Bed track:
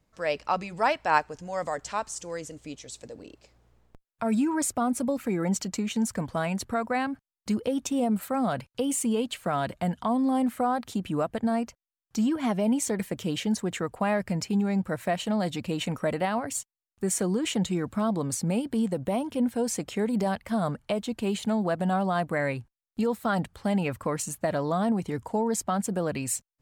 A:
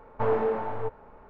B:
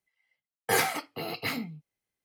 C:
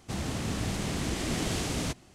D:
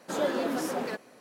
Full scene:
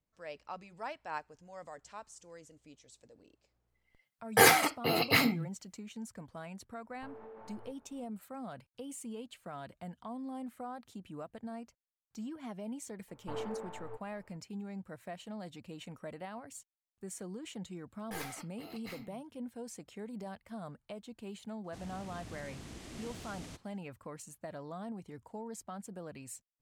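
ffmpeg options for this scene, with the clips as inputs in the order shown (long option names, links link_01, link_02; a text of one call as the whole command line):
ffmpeg -i bed.wav -i cue0.wav -i cue1.wav -i cue2.wav -filter_complex "[2:a]asplit=2[link_01][link_02];[1:a]asplit=2[link_03][link_04];[0:a]volume=-17dB[link_05];[link_01]dynaudnorm=framelen=120:gausssize=5:maxgain=11.5dB[link_06];[link_03]acompressor=threshold=-31dB:ratio=6:attack=3.2:release=140:knee=1:detection=peak[link_07];[link_02]aeval=exprs='clip(val(0),-1,0.0282)':channel_layout=same[link_08];[link_06]atrim=end=2.24,asetpts=PTS-STARTPTS,volume=-5.5dB,afade=type=in:duration=0.004:curve=hsin,afade=type=out:start_time=2.236:duration=0.004:curve=hsin,adelay=3680[link_09];[link_07]atrim=end=1.29,asetpts=PTS-STARTPTS,volume=-16dB,afade=type=in:duration=0.1,afade=type=out:start_time=1.19:duration=0.1,adelay=6830[link_10];[link_04]atrim=end=1.29,asetpts=PTS-STARTPTS,volume=-15dB,afade=type=in:duration=0.004:curve=hsin,afade=type=out:start_time=1.286:duration=0.004:curve=hsin,adelay=13080[link_11];[link_08]atrim=end=2.24,asetpts=PTS-STARTPTS,volume=-15dB,afade=type=in:duration=0.004:curve=hsin,afade=type=out:start_time=2.236:duration=0.004:curve=hsin,adelay=17420[link_12];[3:a]atrim=end=2.14,asetpts=PTS-STARTPTS,volume=-16.5dB,afade=type=in:duration=0.004:curve=hsin,afade=type=out:start_time=2.136:duration=0.004:curve=hsin,adelay=954324S[link_13];[link_05][link_09][link_10][link_11][link_12][link_13]amix=inputs=6:normalize=0" out.wav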